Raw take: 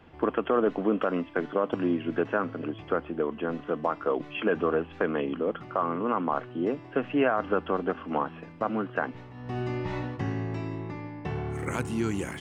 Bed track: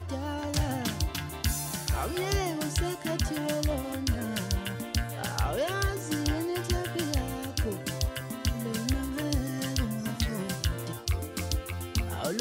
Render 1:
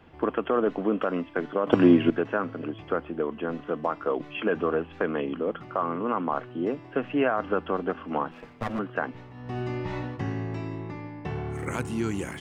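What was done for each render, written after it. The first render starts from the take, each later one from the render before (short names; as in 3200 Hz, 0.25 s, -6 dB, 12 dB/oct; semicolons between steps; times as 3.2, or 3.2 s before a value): 1.67–2.1 gain +9.5 dB; 8.31–8.79 minimum comb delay 8.3 ms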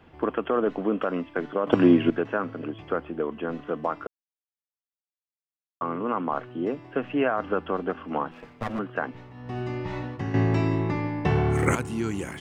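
4.07–5.81 mute; 10.34–11.75 gain +10 dB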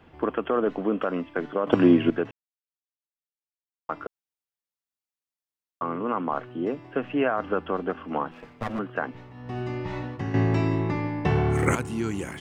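2.31–3.89 mute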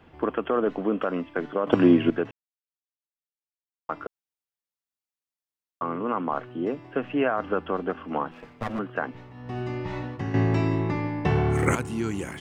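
nothing audible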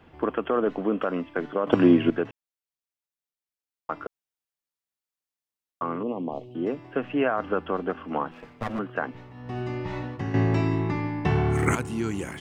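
6.03–6.55 Butterworth band-stop 1500 Hz, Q 0.59; 10.61–11.77 bell 530 Hz -12 dB 0.21 oct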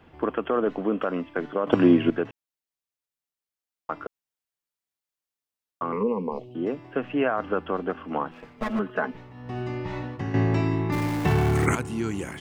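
5.92–6.39 ripple EQ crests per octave 0.87, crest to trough 18 dB; 8.57–9.17 comb 4.7 ms, depth 87%; 10.92–11.66 zero-crossing step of -29 dBFS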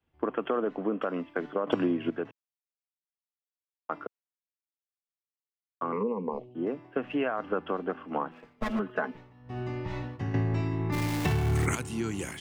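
compressor 6:1, threshold -26 dBFS, peak gain reduction 13 dB; three-band expander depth 100%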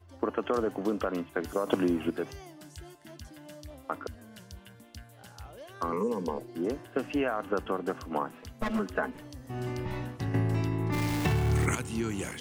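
add bed track -17.5 dB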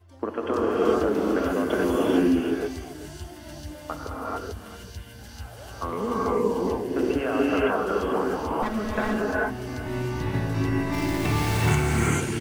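echo 0.387 s -15.5 dB; non-linear reverb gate 0.47 s rising, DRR -6 dB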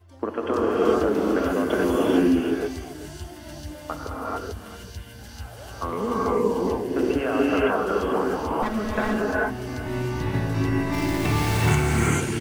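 gain +1.5 dB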